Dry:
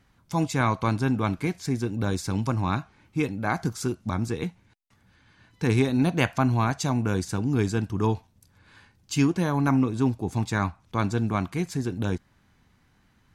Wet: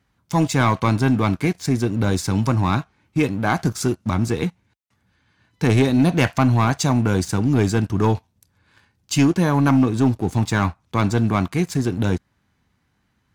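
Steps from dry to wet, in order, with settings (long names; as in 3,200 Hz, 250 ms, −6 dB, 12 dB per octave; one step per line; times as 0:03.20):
high-pass filter 41 Hz 24 dB per octave
leveller curve on the samples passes 2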